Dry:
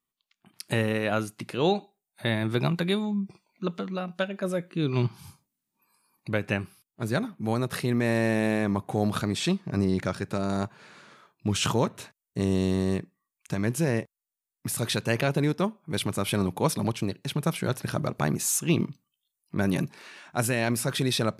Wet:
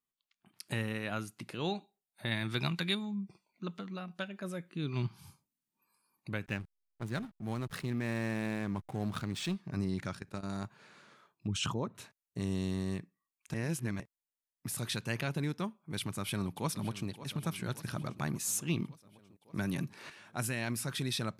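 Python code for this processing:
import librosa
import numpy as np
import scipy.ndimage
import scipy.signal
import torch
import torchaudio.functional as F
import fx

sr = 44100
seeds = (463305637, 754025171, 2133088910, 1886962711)

y = fx.peak_eq(x, sr, hz=3900.0, db=7.5, octaves=2.9, at=(2.31, 2.95))
y = fx.backlash(y, sr, play_db=-34.0, at=(6.46, 9.56))
y = fx.level_steps(y, sr, step_db=14, at=(10.15, 10.64))
y = fx.envelope_sharpen(y, sr, power=1.5, at=(11.47, 11.95))
y = fx.echo_throw(y, sr, start_s=15.99, length_s=1.09, ms=570, feedback_pct=65, wet_db=-15.5)
y = fx.band_squash(y, sr, depth_pct=70, at=(19.57, 20.1))
y = fx.edit(y, sr, fx.reverse_span(start_s=13.54, length_s=0.46), tone=tone)
y = fx.dynamic_eq(y, sr, hz=510.0, q=1.0, threshold_db=-40.0, ratio=4.0, max_db=-7)
y = F.gain(torch.from_numpy(y), -7.5).numpy()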